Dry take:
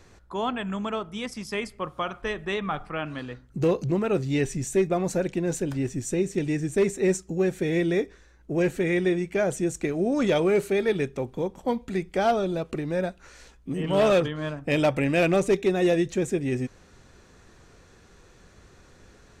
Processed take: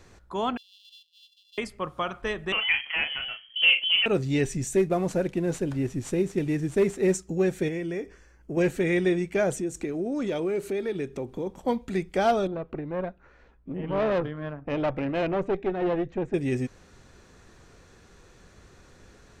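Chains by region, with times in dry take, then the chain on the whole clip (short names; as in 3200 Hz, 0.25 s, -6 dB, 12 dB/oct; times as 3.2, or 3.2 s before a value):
0.57–1.58 sample sorter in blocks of 64 samples + steep high-pass 3000 Hz 96 dB/oct + air absorption 390 m
2.52–4.06 bell 850 Hz +8 dB 0.78 oct + doubler 35 ms -7 dB + inverted band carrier 3200 Hz
4.77–7.14 CVSD 64 kbps + high shelf 3200 Hz -7.5 dB
7.68–8.57 compressor 3:1, threshold -30 dBFS + Butterworth band-stop 3800 Hz, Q 4.6
9.57–11.47 bell 330 Hz +5.5 dB 1 oct + compressor 2:1, threshold -33 dBFS
12.47–16.34 LPF 1700 Hz + tube stage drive 20 dB, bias 0.7
whole clip: dry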